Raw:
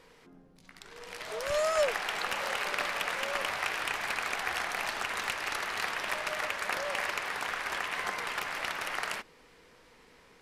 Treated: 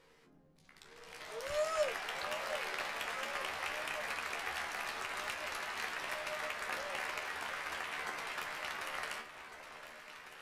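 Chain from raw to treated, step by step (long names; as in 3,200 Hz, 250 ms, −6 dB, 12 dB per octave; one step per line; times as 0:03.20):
tuned comb filter 76 Hz, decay 0.18 s, harmonics all, mix 90%
on a send: delay that swaps between a low-pass and a high-pass 726 ms, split 1,100 Hz, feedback 77%, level −10 dB
on the sum: level −1.5 dB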